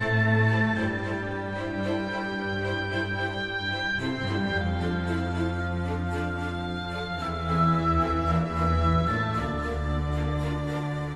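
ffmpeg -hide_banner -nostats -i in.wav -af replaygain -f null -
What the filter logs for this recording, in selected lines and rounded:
track_gain = +9.3 dB
track_peak = 0.185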